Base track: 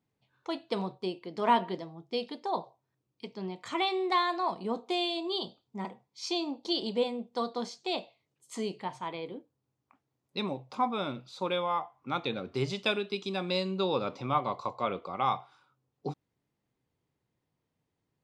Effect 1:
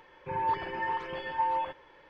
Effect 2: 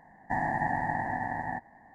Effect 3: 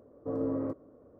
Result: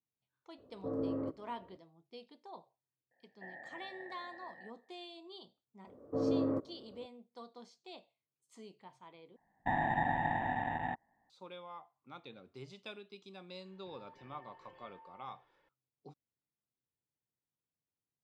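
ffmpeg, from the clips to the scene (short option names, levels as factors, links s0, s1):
-filter_complex "[3:a]asplit=2[s0][s1];[2:a]asplit=2[s2][s3];[0:a]volume=0.119[s4];[s2]asplit=3[s5][s6][s7];[s5]bandpass=f=530:t=q:w=8,volume=1[s8];[s6]bandpass=f=1840:t=q:w=8,volume=0.501[s9];[s7]bandpass=f=2480:t=q:w=8,volume=0.355[s10];[s8][s9][s10]amix=inputs=3:normalize=0[s11];[s1]highpass=74[s12];[s3]afwtdn=0.0112[s13];[1:a]acompressor=threshold=0.01:ratio=6:attack=3.2:release=140:knee=1:detection=peak[s14];[s4]asplit=2[s15][s16];[s15]atrim=end=9.364[s17];[s13]atrim=end=1.94,asetpts=PTS-STARTPTS,volume=0.708[s18];[s16]atrim=start=11.296[s19];[s0]atrim=end=1.19,asetpts=PTS-STARTPTS,volume=0.596,afade=t=in:d=0.004:c=hsin,afade=t=out:st=1.186:d=0.004:c=hsin,adelay=580[s20];[s11]atrim=end=1.94,asetpts=PTS-STARTPTS,volume=0.422,afade=t=in:d=0.004:c=hsin,afade=t=out:st=1.936:d=0.004:c=hsin,adelay=3110[s21];[s12]atrim=end=1.19,asetpts=PTS-STARTPTS,afade=t=in:d=0.004:c=hsin,afade=t=out:st=1.186:d=0.004:c=hsin,adelay=5870[s22];[s14]atrim=end=2.09,asetpts=PTS-STARTPTS,volume=0.141,afade=t=in:d=0.004:c=hsin,afade=t=out:st=2.086:d=0.004:c=hsin,adelay=13600[s23];[s17][s18]acrossfade=d=0.004:c1=hsin:c2=hsin[s24];[s24][s19]acrossfade=d=0.004:c1=hsin:c2=hsin[s25];[s25][s20][s21][s22][s23]amix=inputs=5:normalize=0"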